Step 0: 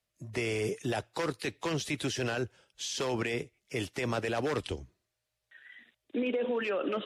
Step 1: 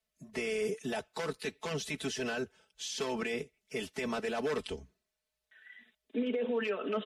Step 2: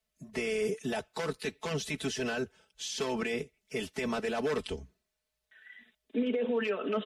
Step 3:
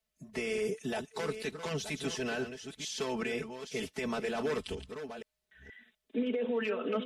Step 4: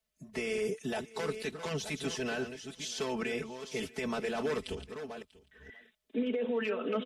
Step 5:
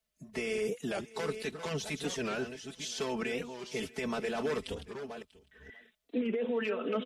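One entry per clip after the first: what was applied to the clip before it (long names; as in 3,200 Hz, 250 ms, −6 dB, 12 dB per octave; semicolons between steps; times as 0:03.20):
comb filter 4.6 ms, depth 98%; level −5.5 dB
low-shelf EQ 170 Hz +4 dB; level +1.5 dB
delay that plays each chunk backwards 475 ms, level −9 dB; level −2 dB
single-tap delay 641 ms −21.5 dB
wow of a warped record 45 rpm, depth 160 cents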